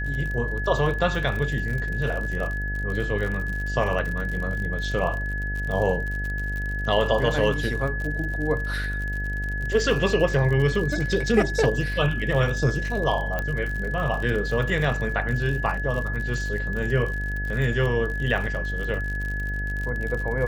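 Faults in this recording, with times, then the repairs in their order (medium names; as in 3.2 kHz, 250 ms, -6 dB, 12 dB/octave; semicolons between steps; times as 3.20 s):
buzz 50 Hz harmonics 16 -29 dBFS
crackle 52 per s -30 dBFS
whine 1.7 kHz -30 dBFS
13.39 s: pop -14 dBFS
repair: de-click; band-stop 1.7 kHz, Q 30; de-hum 50 Hz, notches 16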